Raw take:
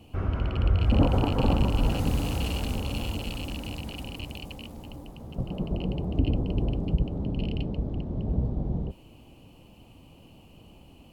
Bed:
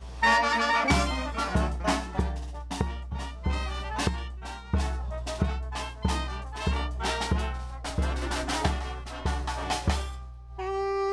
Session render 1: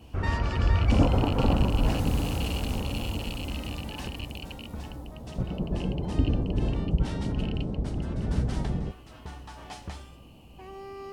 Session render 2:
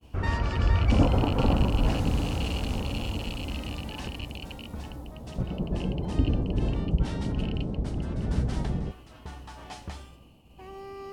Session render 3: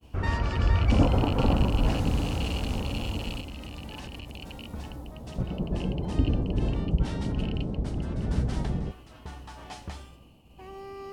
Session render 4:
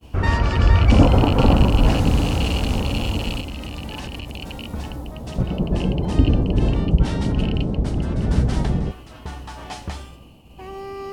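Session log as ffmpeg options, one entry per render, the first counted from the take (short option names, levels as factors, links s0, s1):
-filter_complex "[1:a]volume=0.224[s0];[0:a][s0]amix=inputs=2:normalize=0"
-filter_complex "[0:a]agate=range=0.0224:threshold=0.00562:ratio=3:detection=peak,acrossover=split=8600[s0][s1];[s1]acompressor=threshold=0.00141:ratio=4:attack=1:release=60[s2];[s0][s2]amix=inputs=2:normalize=0"
-filter_complex "[0:a]asettb=1/sr,asplit=3[s0][s1][s2];[s0]atrim=end=3.404[s3];[s1]atrim=start=3.4:end=4.71,asetpts=PTS-STARTPTS,afade=t=in:d=0.004:c=qsin,afade=t=out:st=1.306:d=0.004:c=qsin,acompressor=threshold=0.0178:ratio=6:attack=3.2:release=140:knee=1:detection=peak[s4];[s2]atrim=start=4.706[s5];[s3][s4]acrossfade=d=0.004:c1=hsin:c2=qsin[s6];[s6][s5]acrossfade=d=0.004:c1=qsin:c2=hsin"
-af "volume=2.66,alimiter=limit=0.708:level=0:latency=1"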